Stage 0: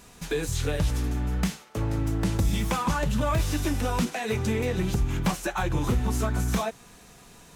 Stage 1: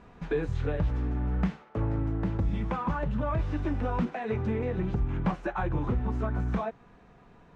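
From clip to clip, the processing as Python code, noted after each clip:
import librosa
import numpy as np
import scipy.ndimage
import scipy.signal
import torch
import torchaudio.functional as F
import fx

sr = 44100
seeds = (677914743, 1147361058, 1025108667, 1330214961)

y = scipy.signal.sosfilt(scipy.signal.butter(2, 1600.0, 'lowpass', fs=sr, output='sos'), x)
y = fx.rider(y, sr, range_db=3, speed_s=0.5)
y = y * 10.0 ** (-2.5 / 20.0)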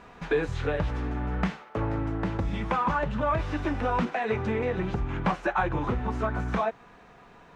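y = fx.low_shelf(x, sr, hz=390.0, db=-11.0)
y = y * 10.0 ** (8.5 / 20.0)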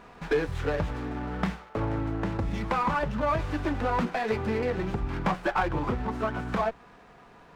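y = fx.hum_notches(x, sr, base_hz=60, count=3)
y = fx.running_max(y, sr, window=5)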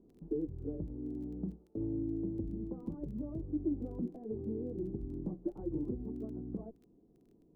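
y = fx.ladder_lowpass(x, sr, hz=370.0, resonance_pct=60)
y = fx.dmg_crackle(y, sr, seeds[0], per_s=12.0, level_db=-52.0)
y = y * 10.0 ** (-1.5 / 20.0)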